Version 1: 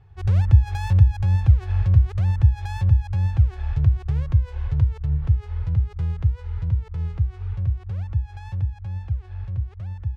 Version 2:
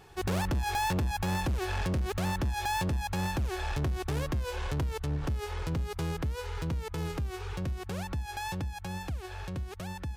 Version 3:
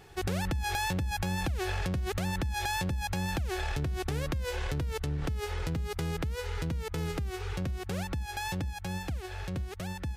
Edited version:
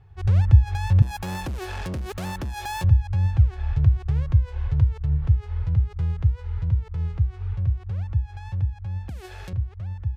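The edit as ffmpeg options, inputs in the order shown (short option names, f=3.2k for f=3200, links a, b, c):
-filter_complex "[0:a]asplit=3[a][b][c];[a]atrim=end=1.022[d];[1:a]atrim=start=1.018:end=2.842[e];[b]atrim=start=2.838:end=9.092[f];[2:a]atrim=start=9.088:end=9.532[g];[c]atrim=start=9.528[h];[d][e]acrossfade=d=0.004:c1=hsin:c2=hsin[i];[i][f]acrossfade=d=0.004:c1=hsin:c2=hsin[j];[j][g]acrossfade=d=0.004:c1=hsin:c2=hsin[k];[k][h]acrossfade=d=0.004:c1=hsin:c2=hsin"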